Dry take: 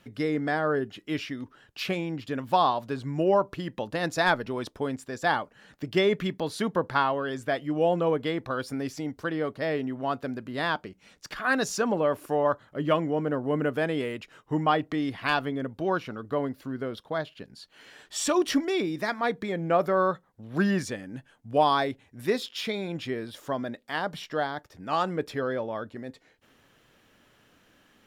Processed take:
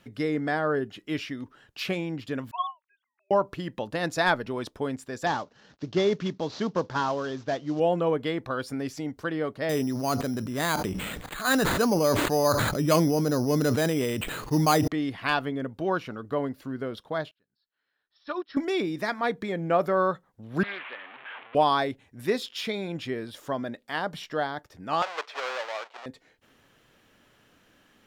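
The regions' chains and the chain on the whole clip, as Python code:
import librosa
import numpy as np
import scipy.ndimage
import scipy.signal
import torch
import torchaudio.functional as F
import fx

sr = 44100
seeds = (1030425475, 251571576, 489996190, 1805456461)

y = fx.chain(x, sr, fx.sine_speech(),
    fx.highpass(hz=1100.0, slope=24),
    fx.upward_expand(threshold_db=-40.0, expansion=2.5), at=(2.51, 3.31))
y = fx.chain(y, sr, fx.cvsd(bps=32000),
    fx.highpass(hz=60.0, slope=12),
    fx.peak_eq(hz=2100.0, db=-6.5, octaves=0.89), at=(5.26, 7.8))
y = fx.chain(y, sr, fx.low_shelf(hz=230.0, db=6.0),
    fx.resample_bad(factor=8, down='none', up='hold'),
    fx.sustainer(db_per_s=27.0), at=(9.69, 14.88))
y = fx.chain(y, sr, fx.cheby_ripple(hz=5400.0, ripple_db=9),
    fx.upward_expand(threshold_db=-44.0, expansion=2.5), at=(17.31, 18.57))
y = fx.chain(y, sr, fx.delta_mod(bps=16000, step_db=-32.0),
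    fx.highpass(hz=880.0, slope=12),
    fx.doppler_dist(depth_ms=0.81), at=(20.63, 21.55))
y = fx.chain(y, sr, fx.halfwave_hold(),
    fx.highpass(hz=630.0, slope=24),
    fx.air_absorb(metres=160.0), at=(25.02, 26.06))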